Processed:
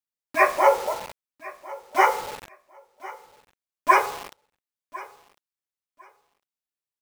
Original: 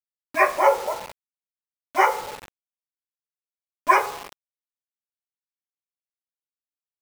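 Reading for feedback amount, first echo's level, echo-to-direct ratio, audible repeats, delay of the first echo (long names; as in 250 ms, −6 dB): 20%, −20.0 dB, −20.0 dB, 2, 1,052 ms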